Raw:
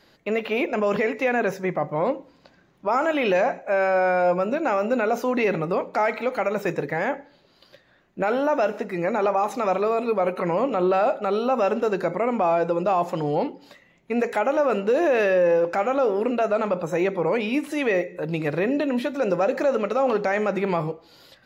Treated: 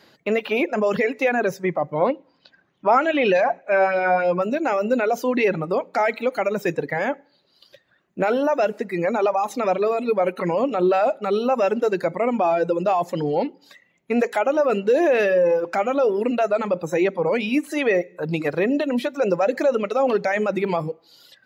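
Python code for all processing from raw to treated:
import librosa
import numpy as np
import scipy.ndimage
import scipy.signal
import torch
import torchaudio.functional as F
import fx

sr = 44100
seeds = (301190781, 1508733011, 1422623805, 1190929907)

y = fx.chain(x, sr, fx.lowpass(hz=5000.0, slope=12),
    fx.bell_lfo(hz=3.3, low_hz=740.0, high_hz=3900.0, db=7), at=(2.01, 4.42))
y = scipy.signal.sosfilt(scipy.signal.butter(2, 110.0, 'highpass', fs=sr, output='sos'), y)
y = fx.dereverb_blind(y, sr, rt60_s=1.5)
y = fx.dynamic_eq(y, sr, hz=1100.0, q=1.4, threshold_db=-36.0, ratio=4.0, max_db=-4)
y = F.gain(torch.from_numpy(y), 4.0).numpy()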